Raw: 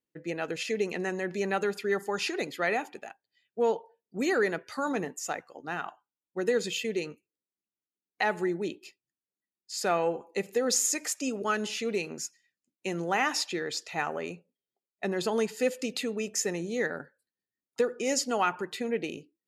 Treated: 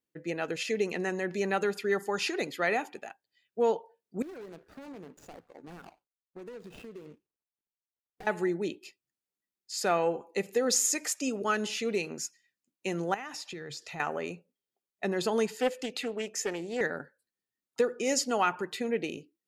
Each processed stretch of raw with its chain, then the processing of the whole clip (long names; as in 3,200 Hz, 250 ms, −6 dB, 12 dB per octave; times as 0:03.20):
0:04.22–0:08.27: running median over 41 samples + downward compressor 5 to 1, threshold −43 dBFS
0:13.14–0:14.00: parametric band 140 Hz +14.5 dB 0.4 octaves + downward compressor 4 to 1, threshold −39 dBFS
0:15.57–0:16.81: bass and treble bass −10 dB, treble −5 dB + highs frequency-modulated by the lows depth 0.2 ms
whole clip: no processing